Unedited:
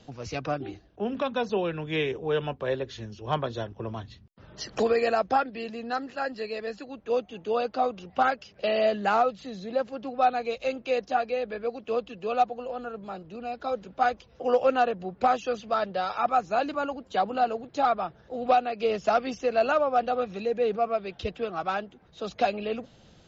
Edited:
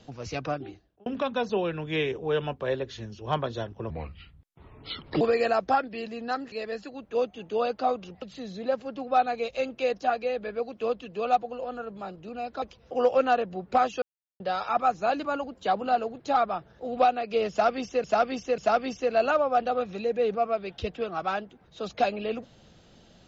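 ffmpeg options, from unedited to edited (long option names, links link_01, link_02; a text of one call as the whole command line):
ffmpeg -i in.wav -filter_complex "[0:a]asplit=11[link_01][link_02][link_03][link_04][link_05][link_06][link_07][link_08][link_09][link_10][link_11];[link_01]atrim=end=1.06,asetpts=PTS-STARTPTS,afade=type=out:start_time=0.45:duration=0.61[link_12];[link_02]atrim=start=1.06:end=3.904,asetpts=PTS-STARTPTS,afade=type=in:duration=0.004:curve=hsin[link_13];[link_03]atrim=start=3.9:end=4.83,asetpts=PTS-STARTPTS,asetrate=31311,aresample=44100[link_14];[link_04]atrim=start=4.826:end=6.142[link_15];[link_05]atrim=start=6.468:end=8.172[link_16];[link_06]atrim=start=9.288:end=13.692[link_17];[link_07]atrim=start=14.108:end=15.51,asetpts=PTS-STARTPTS,afade=type=out:start_time=1.398:duration=0.004:curve=hsin[link_18];[link_08]atrim=start=15.51:end=15.89,asetpts=PTS-STARTPTS,volume=0[link_19];[link_09]atrim=start=15.89:end=19.532,asetpts=PTS-STARTPTS,afade=type=in:duration=0.004:curve=hsin[link_20];[link_10]atrim=start=18.988:end=19.532[link_21];[link_11]atrim=start=18.988[link_22];[link_12][link_13]concat=n=2:v=0:a=1[link_23];[link_23][link_14]acrossfade=duration=0.004:curve1=hsin:curve2=hsin[link_24];[link_24][link_15]acrossfade=duration=0.004:curve1=hsin:curve2=hsin[link_25];[link_25][link_16]acrossfade=duration=0.004:curve1=hsin:curve2=hsin[link_26];[link_26][link_17]acrossfade=duration=0.004:curve1=hsin:curve2=hsin[link_27];[link_18][link_19][link_20]concat=n=3:v=0:a=1[link_28];[link_27][link_28]acrossfade=duration=0.004:curve1=hsin:curve2=hsin[link_29];[link_29][link_21]acrossfade=duration=0.004:curve1=hsin:curve2=hsin[link_30];[link_30][link_22]acrossfade=duration=0.004:curve1=hsin:curve2=hsin" out.wav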